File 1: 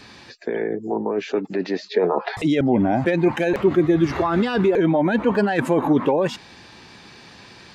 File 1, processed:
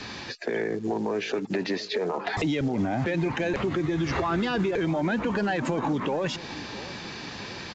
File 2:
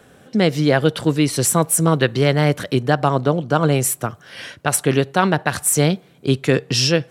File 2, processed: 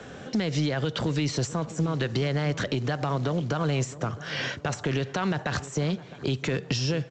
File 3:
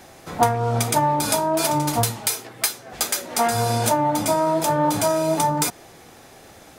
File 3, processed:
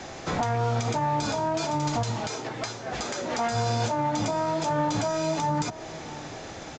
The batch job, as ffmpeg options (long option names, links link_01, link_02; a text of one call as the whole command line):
ffmpeg -i in.wav -filter_complex "[0:a]asplit=2[link_01][link_02];[link_02]acompressor=threshold=-27dB:ratio=6,volume=1dB[link_03];[link_01][link_03]amix=inputs=2:normalize=0,alimiter=limit=-11dB:level=0:latency=1:release=74,acrossover=split=140|1400[link_04][link_05][link_06];[link_04]acompressor=threshold=-29dB:ratio=4[link_07];[link_05]acompressor=threshold=-26dB:ratio=4[link_08];[link_06]acompressor=threshold=-31dB:ratio=4[link_09];[link_07][link_08][link_09]amix=inputs=3:normalize=0,acrusher=bits=6:mode=log:mix=0:aa=0.000001,asoftclip=type=tanh:threshold=-16dB,asplit=2[link_10][link_11];[link_11]adelay=661,lowpass=frequency=1100:poles=1,volume=-15.5dB,asplit=2[link_12][link_13];[link_13]adelay=661,lowpass=frequency=1100:poles=1,volume=0.46,asplit=2[link_14][link_15];[link_15]adelay=661,lowpass=frequency=1100:poles=1,volume=0.46,asplit=2[link_16][link_17];[link_17]adelay=661,lowpass=frequency=1100:poles=1,volume=0.46[link_18];[link_10][link_12][link_14][link_16][link_18]amix=inputs=5:normalize=0,aresample=16000,aresample=44100" out.wav